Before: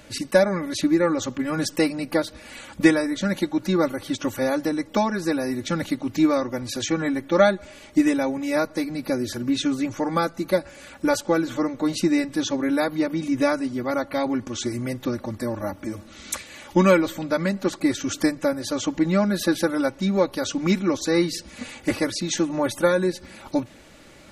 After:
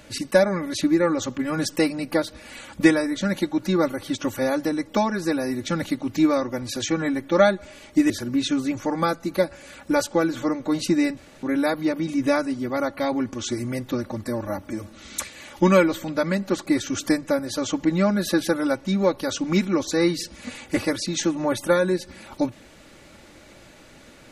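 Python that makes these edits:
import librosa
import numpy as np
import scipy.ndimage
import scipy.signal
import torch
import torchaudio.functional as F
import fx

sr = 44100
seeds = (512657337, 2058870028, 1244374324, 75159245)

y = fx.edit(x, sr, fx.cut(start_s=8.1, length_s=1.14),
    fx.room_tone_fill(start_s=12.31, length_s=0.26), tone=tone)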